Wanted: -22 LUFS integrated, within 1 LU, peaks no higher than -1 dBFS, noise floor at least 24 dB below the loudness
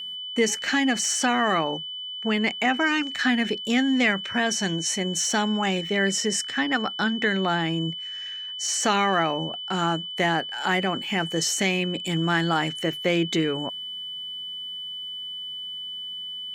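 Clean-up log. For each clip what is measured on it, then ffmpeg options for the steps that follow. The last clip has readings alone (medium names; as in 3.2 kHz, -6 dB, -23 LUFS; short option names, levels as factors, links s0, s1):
steady tone 3 kHz; tone level -32 dBFS; loudness -24.5 LUFS; peak level -9.5 dBFS; loudness target -22.0 LUFS
-> -af "bandreject=f=3000:w=30"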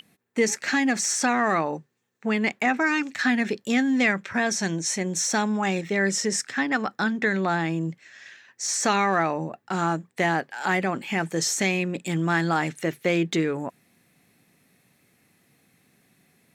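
steady tone not found; loudness -24.5 LUFS; peak level -9.5 dBFS; loudness target -22.0 LUFS
-> -af "volume=1.33"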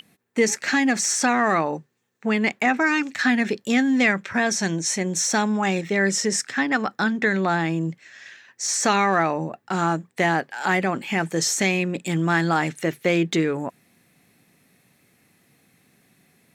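loudness -22.0 LUFS; peak level -7.0 dBFS; noise floor -64 dBFS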